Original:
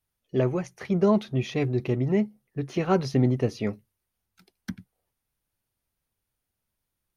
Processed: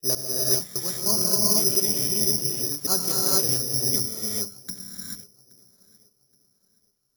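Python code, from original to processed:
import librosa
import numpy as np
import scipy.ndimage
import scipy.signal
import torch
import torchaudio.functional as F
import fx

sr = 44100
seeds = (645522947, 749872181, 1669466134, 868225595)

p1 = fx.block_reorder(x, sr, ms=151.0, group=3)
p2 = fx.hum_notches(p1, sr, base_hz=50, count=5)
p3 = fx.rider(p2, sr, range_db=10, speed_s=0.5)
p4 = p2 + F.gain(torch.from_numpy(p3), -2.0).numpy()
p5 = scipy.signal.sosfilt(scipy.signal.cheby1(6, 6, 4400.0, 'lowpass', fs=sr, output='sos'), p4)
p6 = fx.echo_filtered(p5, sr, ms=823, feedback_pct=33, hz=2600.0, wet_db=-23)
p7 = fx.rev_gated(p6, sr, seeds[0], gate_ms=470, shape='rising', drr_db=-4.0)
p8 = (np.kron(scipy.signal.resample_poly(p7, 1, 8), np.eye(8)[0]) * 8)[:len(p7)]
y = F.gain(torch.from_numpy(p8), -11.5).numpy()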